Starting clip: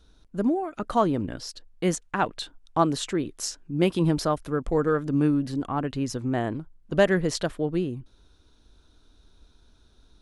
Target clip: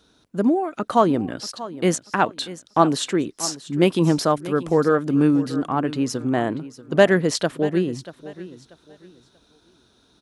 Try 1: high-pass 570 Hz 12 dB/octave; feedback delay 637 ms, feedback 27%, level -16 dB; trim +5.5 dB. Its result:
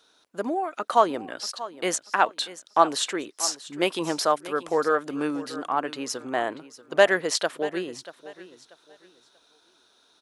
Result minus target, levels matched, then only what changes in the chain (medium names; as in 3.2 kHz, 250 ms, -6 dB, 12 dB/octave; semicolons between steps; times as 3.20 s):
125 Hz band -15.0 dB
change: high-pass 150 Hz 12 dB/octave